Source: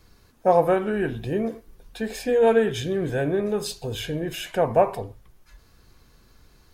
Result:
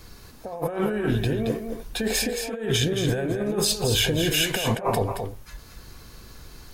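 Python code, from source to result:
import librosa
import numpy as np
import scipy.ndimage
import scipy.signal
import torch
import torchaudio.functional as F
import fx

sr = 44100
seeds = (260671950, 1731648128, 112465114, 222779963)

y = fx.high_shelf(x, sr, hz=3900.0, db=4.0)
y = fx.over_compress(y, sr, threshold_db=-30.0, ratio=-1.0)
y = y + 10.0 ** (-7.0 / 20.0) * np.pad(y, (int(223 * sr / 1000.0), 0))[:len(y)]
y = y * 10.0 ** (3.5 / 20.0)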